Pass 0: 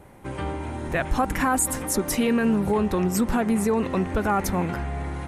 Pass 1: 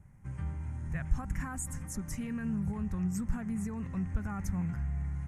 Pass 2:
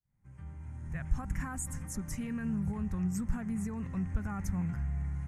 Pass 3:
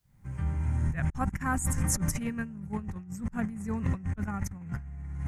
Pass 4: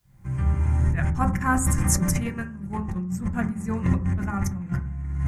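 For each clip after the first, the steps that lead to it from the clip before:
drawn EQ curve 160 Hz 0 dB, 340 Hz −22 dB, 520 Hz −23 dB, 1,900 Hz −12 dB, 3,800 Hz −26 dB, 6,500 Hz −9 dB, 13,000 Hz −19 dB; level −3 dB
fade in at the beginning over 1.28 s
compressor whose output falls as the input rises −40 dBFS, ratio −0.5; level +9 dB
convolution reverb RT60 0.45 s, pre-delay 3 ms, DRR 5 dB; level +5.5 dB

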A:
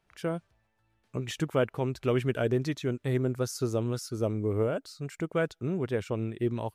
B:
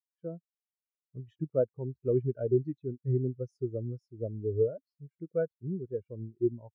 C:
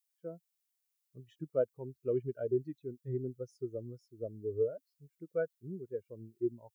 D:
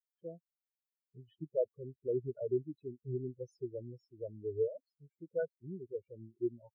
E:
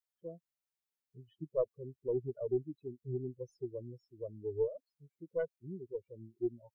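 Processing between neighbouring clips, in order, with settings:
every bin expanded away from the loudest bin 2.5 to 1
spectral tilt +3.5 dB per octave
spectral peaks only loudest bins 8; level −1.5 dB
stylus tracing distortion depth 0.056 ms

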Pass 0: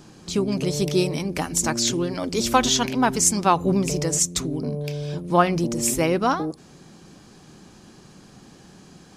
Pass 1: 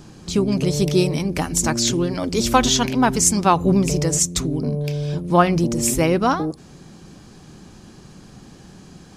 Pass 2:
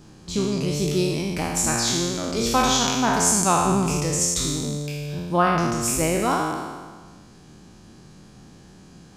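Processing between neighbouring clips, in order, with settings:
low-shelf EQ 130 Hz +8.5 dB; level +2 dB
peak hold with a decay on every bin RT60 1.49 s; level −7 dB

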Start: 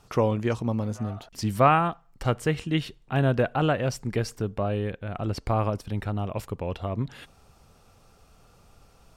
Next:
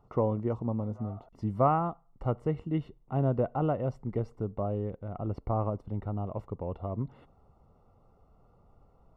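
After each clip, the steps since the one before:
Savitzky-Golay smoothing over 65 samples
level −4.5 dB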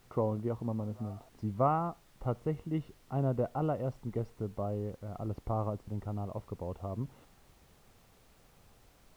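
background noise pink −61 dBFS
level −3.5 dB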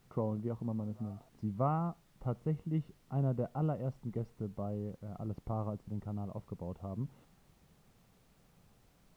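parametric band 170 Hz +8.5 dB 1 octave
level −6 dB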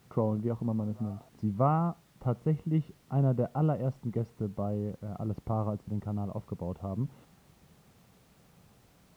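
high-pass filter 54 Hz
level +6 dB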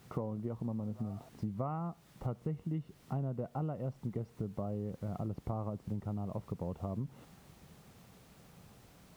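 downward compressor 6 to 1, threshold −37 dBFS, peak gain reduction 15.5 dB
level +2.5 dB

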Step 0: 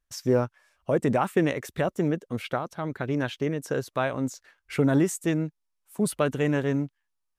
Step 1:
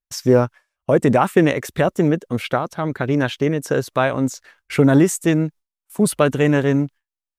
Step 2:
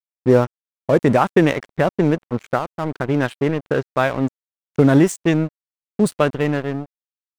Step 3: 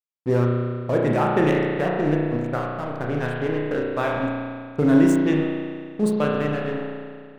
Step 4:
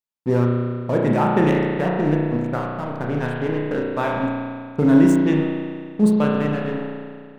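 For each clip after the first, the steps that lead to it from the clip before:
noise gate with hold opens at −48 dBFS; level +8.5 dB
fade-out on the ending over 1.32 s; low-pass that shuts in the quiet parts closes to 610 Hz, open at −10 dBFS; dead-zone distortion −31 dBFS; level +1 dB
spring reverb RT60 2 s, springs 33 ms, chirp 25 ms, DRR −2.5 dB; level −8 dB
hollow resonant body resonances 200/910 Hz, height 7 dB, ringing for 35 ms

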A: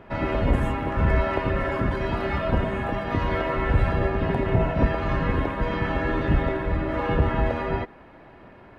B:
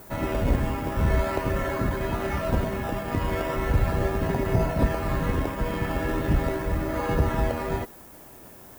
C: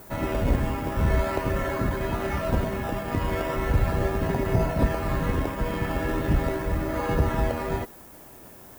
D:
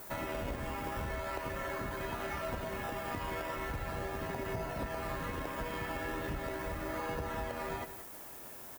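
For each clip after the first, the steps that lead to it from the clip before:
background noise violet −46 dBFS; in parallel at −9.5 dB: sample-and-hold swept by an LFO 15×, swing 100% 0.39 Hz; on the sum: level −4 dB
no processing that can be heard
low-shelf EQ 460 Hz −10 dB; downward compressor, threshold −35 dBFS, peak gain reduction 10.5 dB; on a send: single-tap delay 172 ms −11.5 dB

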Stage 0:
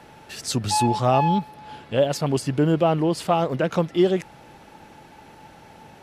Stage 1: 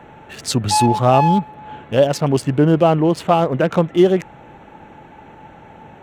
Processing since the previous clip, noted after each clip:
adaptive Wiener filter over 9 samples
level +6 dB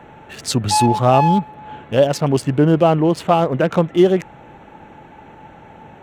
no processing that can be heard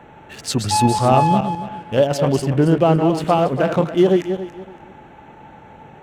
feedback delay that plays each chunk backwards 141 ms, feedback 47%, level −7 dB
level −2 dB

